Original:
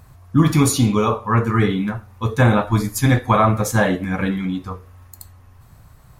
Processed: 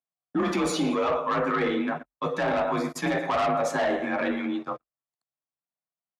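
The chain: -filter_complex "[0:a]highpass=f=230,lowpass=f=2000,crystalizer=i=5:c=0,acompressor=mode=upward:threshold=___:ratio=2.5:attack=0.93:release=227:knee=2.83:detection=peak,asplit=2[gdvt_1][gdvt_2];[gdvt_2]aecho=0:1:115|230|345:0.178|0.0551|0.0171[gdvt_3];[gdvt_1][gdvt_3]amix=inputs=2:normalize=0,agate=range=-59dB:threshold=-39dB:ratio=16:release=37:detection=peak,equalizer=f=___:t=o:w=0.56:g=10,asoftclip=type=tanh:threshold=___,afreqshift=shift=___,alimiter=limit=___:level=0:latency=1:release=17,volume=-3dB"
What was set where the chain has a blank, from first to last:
-31dB, 620, -12.5dB, 42, -14.5dB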